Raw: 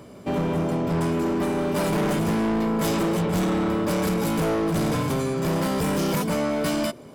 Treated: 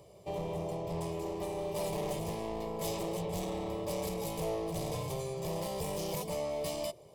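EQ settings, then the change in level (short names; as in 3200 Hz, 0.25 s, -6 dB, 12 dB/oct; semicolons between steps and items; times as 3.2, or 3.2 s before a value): fixed phaser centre 610 Hz, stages 4; -8.0 dB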